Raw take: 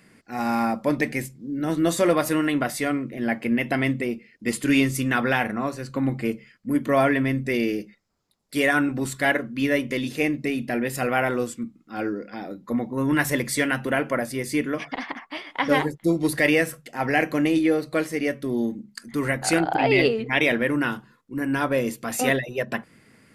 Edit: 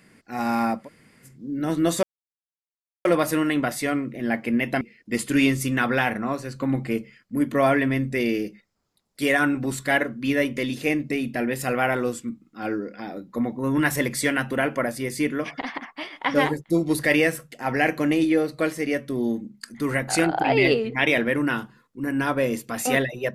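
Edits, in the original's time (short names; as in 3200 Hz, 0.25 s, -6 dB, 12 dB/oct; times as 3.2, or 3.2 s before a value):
0.81–1.3 room tone, crossfade 0.16 s
2.03 insert silence 1.02 s
3.79–4.15 cut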